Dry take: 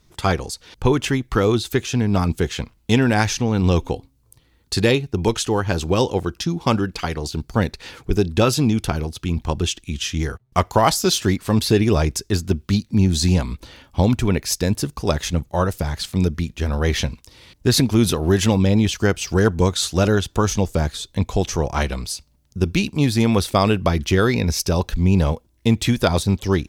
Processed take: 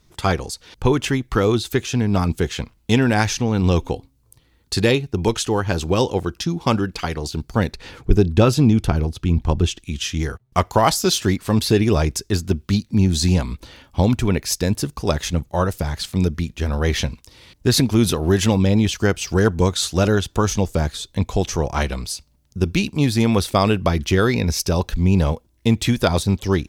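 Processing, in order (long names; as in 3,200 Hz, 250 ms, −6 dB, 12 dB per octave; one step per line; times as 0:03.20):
0:07.75–0:09.78: spectral tilt −1.5 dB per octave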